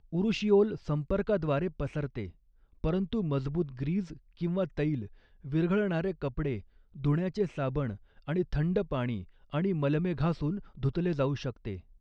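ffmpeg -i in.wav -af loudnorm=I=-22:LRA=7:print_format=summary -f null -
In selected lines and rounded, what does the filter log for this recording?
Input Integrated:    -31.5 LUFS
Input True Peak:     -13.6 dBTP
Input LRA:             1.6 LU
Input Threshold:     -41.8 LUFS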